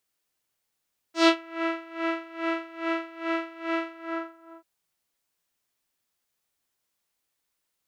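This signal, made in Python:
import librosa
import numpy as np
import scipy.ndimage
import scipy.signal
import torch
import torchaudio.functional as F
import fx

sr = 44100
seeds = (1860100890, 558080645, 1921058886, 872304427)

y = fx.sub_patch_tremolo(sr, seeds[0], note=76, wave='saw', wave2='saw', interval_st=12, detune_cents=30, level2_db=-9.5, sub_db=-2.0, noise_db=-21.0, kind='lowpass', cutoff_hz=1100.0, q=1.7, env_oct=2.5, env_decay_s=0.28, env_sustain_pct=40, attack_ms=146.0, decay_s=0.07, sustain_db=-11.5, release_s=0.75, note_s=2.74, lfo_hz=2.4, tremolo_db=20.0)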